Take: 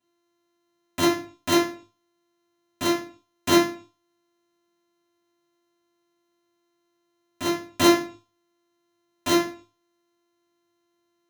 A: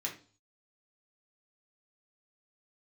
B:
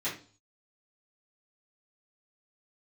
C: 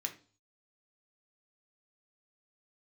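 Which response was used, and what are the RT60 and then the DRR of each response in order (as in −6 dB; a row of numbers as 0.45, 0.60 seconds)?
B; 0.40, 0.40, 0.40 seconds; −2.0, −11.5, 3.0 decibels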